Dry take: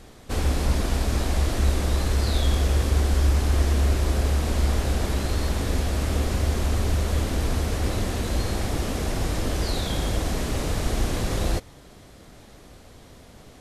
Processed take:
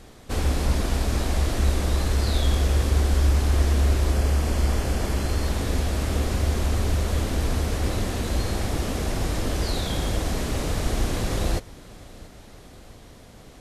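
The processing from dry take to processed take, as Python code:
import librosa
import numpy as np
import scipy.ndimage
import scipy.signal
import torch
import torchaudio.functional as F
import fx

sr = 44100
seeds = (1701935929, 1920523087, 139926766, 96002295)

y = fx.notch(x, sr, hz=3800.0, q=10.0, at=(4.12, 5.46))
y = fx.echo_feedback(y, sr, ms=682, feedback_pct=58, wet_db=-22.5)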